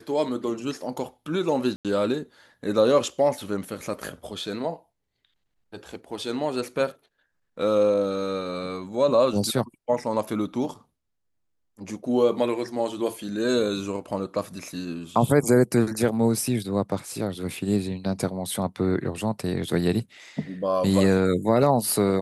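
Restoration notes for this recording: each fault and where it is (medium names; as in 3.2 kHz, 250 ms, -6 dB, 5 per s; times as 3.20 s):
1.76–1.85 s: dropout 87 ms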